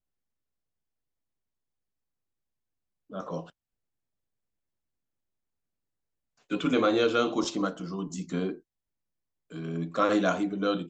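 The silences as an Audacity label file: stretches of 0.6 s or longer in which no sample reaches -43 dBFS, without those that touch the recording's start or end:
3.490000	6.500000	silence
8.580000	9.510000	silence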